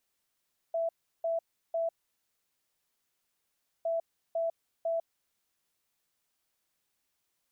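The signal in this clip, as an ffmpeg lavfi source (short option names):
-f lavfi -i "aevalsrc='0.0422*sin(2*PI*663*t)*clip(min(mod(mod(t,3.11),0.5),0.15-mod(mod(t,3.11),0.5))/0.005,0,1)*lt(mod(t,3.11),1.5)':d=6.22:s=44100"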